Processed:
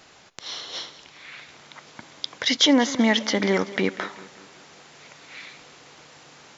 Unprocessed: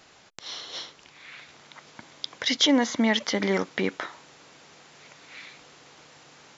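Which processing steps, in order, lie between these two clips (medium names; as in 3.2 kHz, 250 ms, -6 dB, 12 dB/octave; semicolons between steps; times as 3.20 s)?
modulated delay 191 ms, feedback 49%, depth 65 cents, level -17.5 dB; trim +3 dB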